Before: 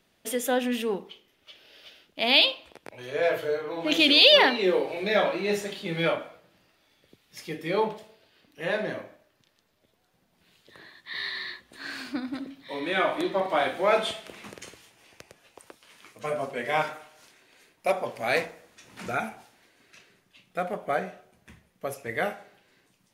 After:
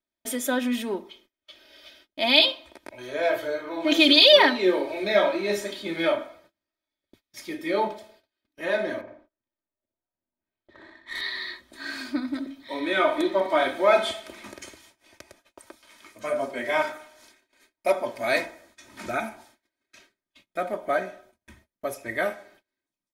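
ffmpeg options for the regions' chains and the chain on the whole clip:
-filter_complex "[0:a]asettb=1/sr,asplit=3[a][b][c];[a]atrim=end=9.014[d];[b]atrim=start=9.01:end=11.21,asetpts=PTS-STARTPTS,afade=t=in:d=0.004:c=qsin,afade=t=out:st=2.196:d=0.004:c=qsin,aecho=1:1:61|122|183:0.631|0.145|0.0334,atrim=end_sample=97020,adynamicsmooth=sensitivity=6:basefreq=2.1k[e];[c]atrim=start=11.206[f];[d][e]acrossfade=d=0.004:c1=hsin:c2=qsin[g];[g][f]acrossfade=d=0.004:c1=qsin:c2=hsin,bandreject=f=2.8k:w=9.9,agate=range=-26dB:threshold=-57dB:ratio=16:detection=peak,aecho=1:1:3.2:0.75"

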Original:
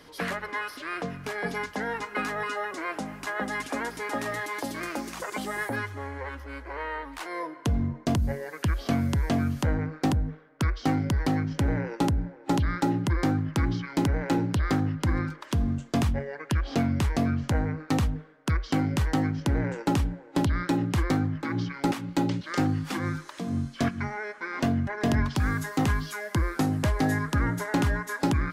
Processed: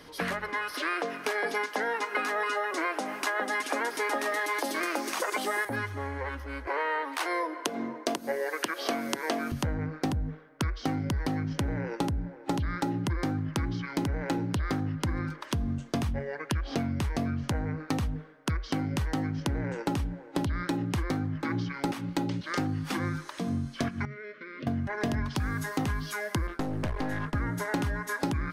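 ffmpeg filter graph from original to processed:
-filter_complex "[0:a]asettb=1/sr,asplit=3[a][b][c];[a]atrim=end=0.744[d];[b]atrim=start=0.74:end=5.65,asetpts=PTS-STARTPTS,afade=t=in:d=0.004:c=qsin,afade=t=out:st=4.906:d=0.004:c=qsin,acontrast=72,highpass=f=300:w=0.5412,highpass=f=300:w=1.3066[e];[c]atrim=start=5.646[f];[d][e]acrossfade=d=0.004:c1=hsin:c2=qsin[g];[g][f]acrossfade=d=0.004:c1=qsin:c2=hsin,asettb=1/sr,asplit=3[h][i][j];[h]atrim=end=6.674[k];[i]atrim=start=6.67:end=9.52,asetpts=PTS-STARTPTS,afade=t=in:d=0.004:c=qsin,afade=t=out:st=2.846:d=0.004:c=qsin,highpass=f=320:w=0.5412,highpass=f=320:w=1.3066,acontrast=69[l];[j]atrim=start=9.516[m];[k][l]acrossfade=d=0.004:c1=hsin:c2=qsin[n];[n][m]acrossfade=d=0.004:c1=qsin:c2=hsin,asettb=1/sr,asplit=3[o][p][q];[o]atrim=end=24.054[r];[p]atrim=start=24.05:end=24.67,asetpts=PTS-STARTPTS,afade=t=in:d=0.004:c=qsin,afade=t=out:st=0.616:d=0.004:c=qsin,acompressor=threshold=-36dB:ratio=10:attack=3.2:release=140:knee=1:detection=peak,asuperstop=centerf=820:order=12:qfactor=2,highpass=110,equalizer=f=140:t=q:w=4:g=9,equalizer=f=670:t=q:w=4:g=-5,equalizer=f=1.1k:t=q:w=4:g=-9,equalizer=f=1.6k:t=q:w=4:g=-6,lowpass=f=4k:w=0.5412,lowpass=f=4k:w=1.3066[s];[q]atrim=start=24.666[t];[r][s]acrossfade=d=0.004:c1=hsin:c2=qsin[u];[u][t]acrossfade=d=0.004:c1=qsin:c2=hsin,asettb=1/sr,asplit=3[v][w][x];[v]atrim=end=26.474[y];[w]atrim=start=26.47:end=27.35,asetpts=PTS-STARTPTS,afade=t=in:d=0.004:c=qsin,afade=t=out:st=0.876:d=0.004:c=qsin,agate=range=-33dB:threshold=-33dB:ratio=3:release=100:detection=peak,aeval=exprs='clip(val(0),-1,0.0188)':c=same,highshelf=f=5.2k:g=-10.5[z];[x]atrim=start=27.346[aa];[y][z]acrossfade=d=0.004:c1=hsin:c2=qsin[ab];[ab][aa]acrossfade=d=0.004:c1=qsin:c2=hsin,bandreject=f=7.3k:w=12,acompressor=threshold=-28dB:ratio=6,volume=1.5dB"

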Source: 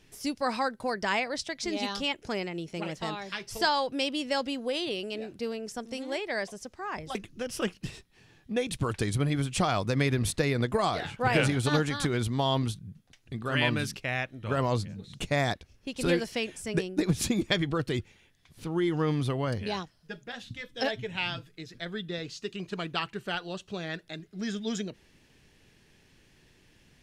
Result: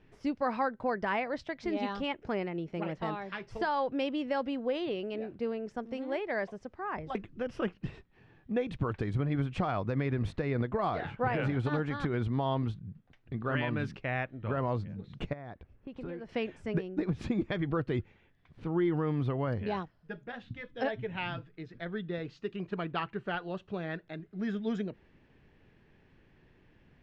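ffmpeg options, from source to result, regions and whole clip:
-filter_complex "[0:a]asettb=1/sr,asplit=3[a][b][c];[a]atrim=end=15.334[d];[b]atrim=start=15.33:end=16.29,asetpts=PTS-STARTPTS,afade=t=in:d=0.004:c=qsin,afade=t=out:st=0.956:d=0.004:c=qsin,highshelf=f=3.2k:g=-11,acompressor=threshold=-39dB:ratio=4:attack=3.2:release=140:knee=1:detection=peak[e];[c]atrim=start=16.286[f];[d][e]acrossfade=d=0.004:c1=hsin:c2=qsin[g];[g][f]acrossfade=d=0.004:c1=qsin:c2=hsin,lowpass=1.8k,alimiter=limit=-20dB:level=0:latency=1:release=230"

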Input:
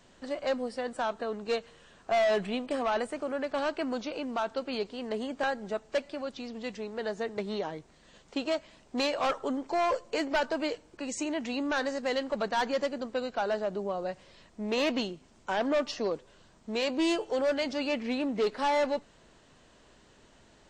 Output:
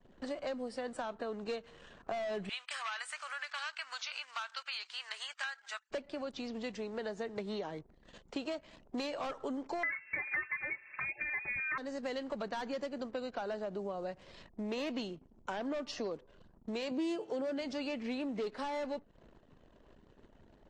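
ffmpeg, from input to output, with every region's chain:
-filter_complex "[0:a]asettb=1/sr,asplit=3[a][b][c];[a]atrim=end=2.494[d];[b]atrim=start=2.49:end=5.91,asetpts=PTS-STARTPTS,afade=t=in:d=0.004:c=qsin,afade=t=out:st=3.416:d=0.004:c=qsin,highpass=f=1.3k:w=0.5412,highpass=f=1.3k:w=1.3066,acontrast=44[e];[c]atrim=start=5.906[f];[d][e]acrossfade=d=0.004:c1=hsin:c2=qsin[g];[g][f]acrossfade=d=0.004:c1=qsin:c2=hsin,asettb=1/sr,asplit=3[h][i][j];[h]atrim=end=9.834[k];[i]atrim=start=9.83:end=11.78,asetpts=PTS-STARTPTS,afade=t=in:d=0.004:c=qsin,afade=t=out:st=1.946:d=0.004:c=qsin,equalizer=f=910:t=o:w=1.5:g=15,aecho=1:1:4.3:0.98,atrim=end_sample=85995,lowpass=f=2.3k:t=q:w=0.5098,lowpass=f=2.3k:t=q:w=0.6013,lowpass=f=2.3k:t=q:w=0.9,lowpass=f=2.3k:t=q:w=2.563,afreqshift=-2700[l];[j]atrim=start=11.776[m];[k][l]acrossfade=d=0.004:c1=hsin:c2=qsin[n];[n][m]acrossfade=d=0.004:c1=qsin:c2=hsin,asettb=1/sr,asplit=3[o][p][q];[o]atrim=end=16.914[r];[p]atrim=start=16.91:end=17.61,asetpts=PTS-STARTPTS,afade=t=in:d=0.004:c=qsin,afade=t=out:st=0.696:d=0.004:c=qsin,highpass=170,lowshelf=f=350:g=9[s];[q]atrim=start=17.606[t];[r][s]acrossfade=d=0.004:c1=hsin:c2=qsin[u];[u][t]acrossfade=d=0.004:c1=qsin:c2=hsin,acrossover=split=390[v][w];[w]acompressor=threshold=-34dB:ratio=2[x];[v][x]amix=inputs=2:normalize=0,anlmdn=0.000251,acompressor=threshold=-42dB:ratio=2.5,volume=2.5dB"

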